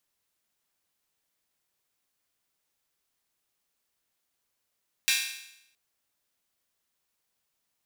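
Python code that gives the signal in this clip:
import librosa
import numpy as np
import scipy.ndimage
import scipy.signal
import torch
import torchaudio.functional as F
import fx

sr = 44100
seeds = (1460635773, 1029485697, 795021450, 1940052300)

y = fx.drum_hat_open(sr, length_s=0.67, from_hz=2300.0, decay_s=0.8)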